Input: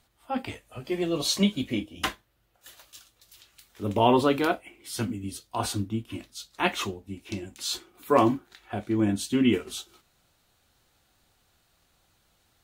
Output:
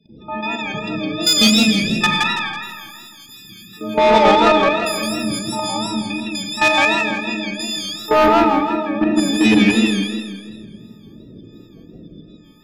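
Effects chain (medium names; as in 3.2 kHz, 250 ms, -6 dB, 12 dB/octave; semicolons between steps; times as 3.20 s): partials quantised in pitch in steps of 6 st; wind noise 120 Hz -37 dBFS; three-band isolator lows -23 dB, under 190 Hz, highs -14 dB, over 4.8 kHz; in parallel at -2.5 dB: peak limiter -15.5 dBFS, peak gain reduction 10.5 dB; on the sum: loudest bins only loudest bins 16; dynamic bell 130 Hz, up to +5 dB, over -35 dBFS, Q 0.72; level held to a coarse grid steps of 17 dB; on a send: feedback echo behind a low-pass 102 ms, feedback 66%, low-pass 670 Hz, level -8 dB; on the sum: Schroeder reverb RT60 1.3 s, combs from 33 ms, DRR 1 dB; saturation -16.5 dBFS, distortion -10 dB; modulated delay 164 ms, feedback 41%, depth 164 cents, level -3 dB; trim +8 dB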